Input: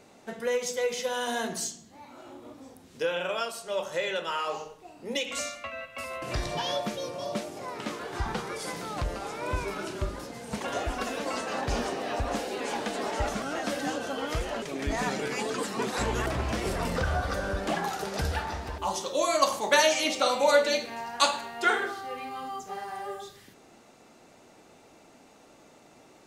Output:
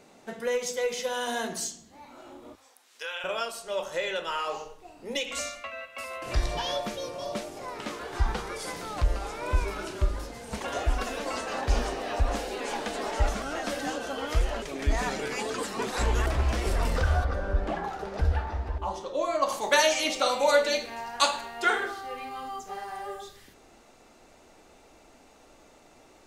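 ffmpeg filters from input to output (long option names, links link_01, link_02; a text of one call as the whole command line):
ffmpeg -i in.wav -filter_complex "[0:a]asettb=1/sr,asplit=3[link_01][link_02][link_03];[link_01]atrim=end=2.554[link_04];[link_02]atrim=start=2.55:end=3.24,asetpts=PTS-STARTPTS,afade=type=in:duration=0.004:curve=qsin,afade=type=out:start_time=0.686:duration=0.004:curve=qsin,highpass=1100[link_05];[link_03]atrim=start=3.236[link_06];[link_04][link_05]acrossfade=duration=0.004:curve1=hsin:curve2=qsin[link_07];[link_07][link_06]acrossfade=duration=0.004:curve1=qsin:curve2=hsin,asettb=1/sr,asplit=3[link_08][link_09][link_10];[link_08]atrim=end=5.614[link_11];[link_09]atrim=start=5.61:end=6.26,asetpts=PTS-STARTPTS,afade=type=in:duration=0.004:curve=qsin,afade=type=out:start_time=0.646:duration=0.004:curve=qsin,highpass=frequency=290:poles=1[link_12];[link_10]atrim=start=6.256[link_13];[link_11][link_12]acrossfade=duration=0.004:curve1=hsin:curve2=qsin[link_14];[link_14][link_13]acrossfade=duration=0.004:curve1=qsin:curve2=hsin,asplit=3[link_15][link_16][link_17];[link_15]afade=type=out:start_time=17.23:duration=0.02[link_18];[link_16]lowpass=frequency=1200:poles=1,afade=type=in:start_time=17.23:duration=0.02,afade=type=out:start_time=19.48:duration=0.02[link_19];[link_17]afade=type=in:start_time=19.48:duration=0.02[link_20];[link_18][link_19][link_20]amix=inputs=3:normalize=0,bandreject=frequency=50:width_type=h:width=6,bandreject=frequency=100:width_type=h:width=6,asubboost=boost=7.5:cutoff=52" out.wav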